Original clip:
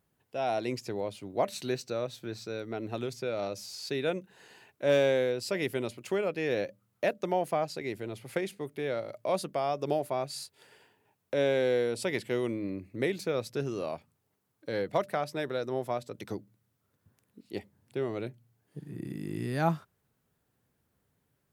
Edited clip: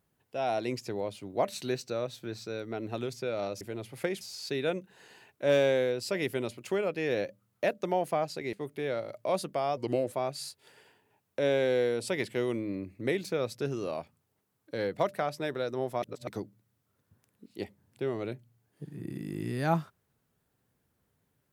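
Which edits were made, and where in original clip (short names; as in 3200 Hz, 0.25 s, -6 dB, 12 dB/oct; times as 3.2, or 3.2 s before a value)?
7.93–8.53 move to 3.61
9.77–10.07 speed 85%
15.97–16.22 reverse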